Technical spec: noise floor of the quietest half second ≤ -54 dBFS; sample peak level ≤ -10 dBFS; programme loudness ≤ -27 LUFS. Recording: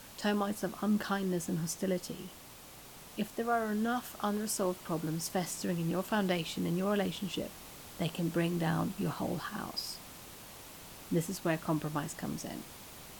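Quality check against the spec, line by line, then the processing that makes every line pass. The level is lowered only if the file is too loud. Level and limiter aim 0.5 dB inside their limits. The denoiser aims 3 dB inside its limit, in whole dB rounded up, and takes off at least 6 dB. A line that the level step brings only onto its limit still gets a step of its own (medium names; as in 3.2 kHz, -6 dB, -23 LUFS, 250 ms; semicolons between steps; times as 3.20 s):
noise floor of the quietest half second -52 dBFS: fail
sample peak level -20.0 dBFS: pass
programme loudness -34.5 LUFS: pass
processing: noise reduction 6 dB, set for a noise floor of -52 dBFS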